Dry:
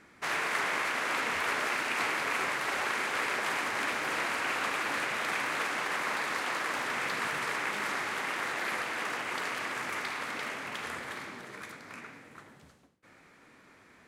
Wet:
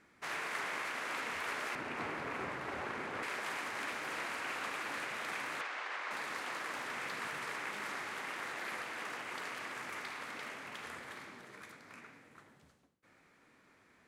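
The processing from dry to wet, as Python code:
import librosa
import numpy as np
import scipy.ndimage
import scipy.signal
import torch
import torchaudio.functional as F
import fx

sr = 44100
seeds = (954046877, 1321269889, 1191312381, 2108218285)

y = fx.tilt_eq(x, sr, slope=-3.5, at=(1.75, 3.23))
y = fx.bandpass_edges(y, sr, low_hz=500.0, high_hz=4700.0, at=(5.61, 6.11))
y = y * librosa.db_to_amplitude(-8.0)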